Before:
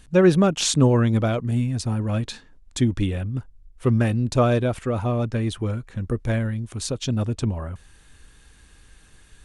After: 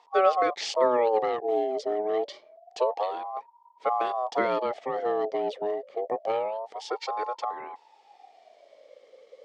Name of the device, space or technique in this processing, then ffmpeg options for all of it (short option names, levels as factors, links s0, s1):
voice changer toy: -filter_complex "[0:a]asettb=1/sr,asplit=3[s0][s1][s2];[s0]atrim=end=6.894[s3];[s1]atrim=start=6.89:end=7.42,asetpts=PTS-STARTPTS,afade=t=in:d=0.004:c=qsin,afade=t=out:st=0.526:d=0.004:c=qsin,aecho=1:1:2.2:0.72,atrim=end_sample=23373[s4];[s2]atrim=start=7.416[s5];[s3][s4]acrossfade=d=0.004:c1=hsin:c2=qsin[s6];[s6][s5]acrossfade=d=0.004:c1=qsin:c2=hsin,aeval=exprs='val(0)*sin(2*PI*740*n/s+740*0.3/0.27*sin(2*PI*0.27*n/s))':c=same,highpass=430,equalizer=f=450:t=q:w=4:g=6,equalizer=f=1000:t=q:w=4:g=-10,equalizer=f=1500:t=q:w=4:g=-10,equalizer=f=2600:t=q:w=4:g=-8,equalizer=f=4000:t=q:w=4:g=-5,lowpass=f=4800:w=0.5412,lowpass=f=4800:w=1.3066"